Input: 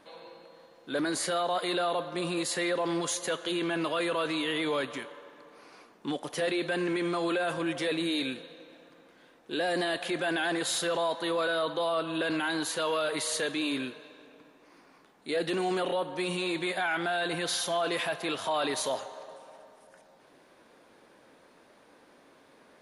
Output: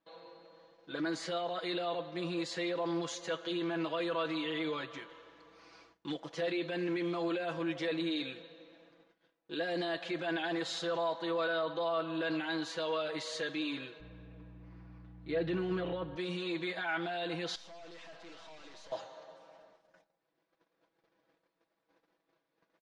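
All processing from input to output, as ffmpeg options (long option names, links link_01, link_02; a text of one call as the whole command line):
ffmpeg -i in.wav -filter_complex "[0:a]asettb=1/sr,asplit=3[link_01][link_02][link_03];[link_01]atrim=end=5.094[link_04];[link_02]atrim=start=5.09:end=6.14,asetpts=PTS-STARTPTS,afade=type=in:duration=0.004:curve=qsin,afade=type=out:start_time=1.046:duration=0.004:curve=qsin,highshelf=frequency=3200:gain=7.5,aeval=exprs='val(0)+0.000398*(sin(2*PI*60*n/s)+sin(2*PI*2*60*n/s)/2+sin(2*PI*3*60*n/s)/3+sin(2*PI*4*60*n/s)/4+sin(2*PI*5*60*n/s)/5)':channel_layout=same[link_05];[link_03]atrim=start=6.136[link_06];[link_04][link_05]acrossfade=duration=0.004:curve1=hsin:curve2=qsin[link_07];[link_07][link_06]acrossfade=duration=0.004:curve1=qsin:curve2=hsin,asettb=1/sr,asplit=3[link_08][link_09][link_10];[link_08]atrim=end=14.004[link_11];[link_09]atrim=start=14:end=16.16,asetpts=PTS-STARTPTS,afade=type=in:duration=0.004:curve=qsin,afade=type=out:start_time=2.156:duration=0.004:curve=qsin,bass=frequency=250:gain=8,treble=frequency=4000:gain=-13,aeval=exprs='val(0)+0.00794*(sin(2*PI*60*n/s)+sin(2*PI*2*60*n/s)/2+sin(2*PI*3*60*n/s)/3+sin(2*PI*4*60*n/s)/4+sin(2*PI*5*60*n/s)/5)':channel_layout=same[link_12];[link_10]atrim=start=16.156[link_13];[link_11][link_12]acrossfade=duration=0.004:curve1=hsin:curve2=qsin[link_14];[link_14][link_13]acrossfade=duration=0.004:curve1=qsin:curve2=hsin,asettb=1/sr,asplit=3[link_15][link_16][link_17];[link_15]atrim=end=17.554[link_18];[link_16]atrim=start=17.55:end=18.92,asetpts=PTS-STARTPTS,afade=type=in:duration=0.004:curve=qsin,afade=type=out:start_time=1.366:duration=0.004:curve=qsin,aeval=exprs='(tanh(178*val(0)+0.55)-tanh(0.55))/178':channel_layout=same,equalizer=frequency=140:width_type=o:width=0.31:gain=-9.5[link_19];[link_17]atrim=start=18.916[link_20];[link_18][link_19]acrossfade=duration=0.004:curve1=hsin:curve2=qsin[link_21];[link_21][link_20]acrossfade=duration=0.004:curve1=qsin:curve2=hsin,lowpass=frequency=6100:width=0.5412,lowpass=frequency=6100:width=1.3066,aecho=1:1:6.1:0.89,agate=range=-18dB:threshold=-53dB:ratio=16:detection=peak,volume=-9dB" out.wav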